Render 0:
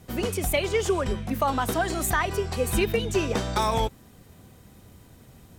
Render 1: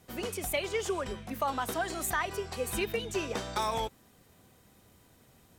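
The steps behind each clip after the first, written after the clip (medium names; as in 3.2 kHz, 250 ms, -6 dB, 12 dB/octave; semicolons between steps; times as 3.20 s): bass shelf 260 Hz -9 dB; trim -5.5 dB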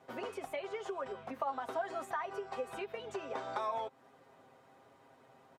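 comb 7.5 ms, depth 63%; compression, threshold -37 dBFS, peak gain reduction 12.5 dB; band-pass filter 820 Hz, Q 1.1; trim +5.5 dB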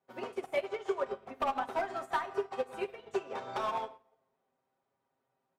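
hard clipper -32 dBFS, distortion -16 dB; reverberation RT60 1.3 s, pre-delay 5 ms, DRR 4 dB; upward expansion 2.5:1, over -53 dBFS; trim +7.5 dB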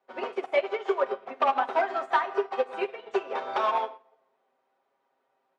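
band-pass 370–3800 Hz; trim +8.5 dB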